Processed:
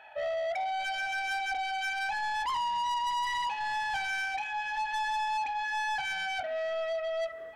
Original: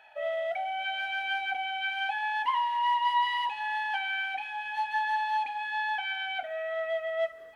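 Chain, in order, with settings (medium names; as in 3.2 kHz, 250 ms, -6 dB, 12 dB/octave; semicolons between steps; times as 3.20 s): treble shelf 3.6 kHz -9 dB; saturation -34.5 dBFS, distortion -8 dB; trim +5.5 dB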